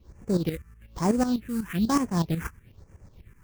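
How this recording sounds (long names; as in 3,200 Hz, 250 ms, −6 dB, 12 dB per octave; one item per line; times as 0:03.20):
aliases and images of a low sample rate 4,300 Hz, jitter 20%
tremolo saw up 8.1 Hz, depth 75%
phaser sweep stages 4, 1.1 Hz, lowest notch 590–3,800 Hz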